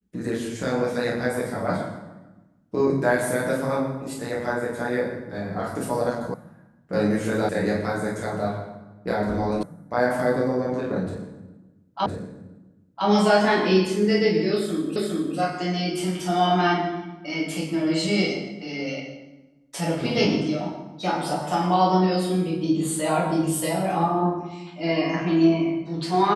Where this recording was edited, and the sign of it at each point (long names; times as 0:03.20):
0:06.34: cut off before it has died away
0:07.49: cut off before it has died away
0:09.63: cut off before it has died away
0:12.06: the same again, the last 1.01 s
0:14.96: the same again, the last 0.41 s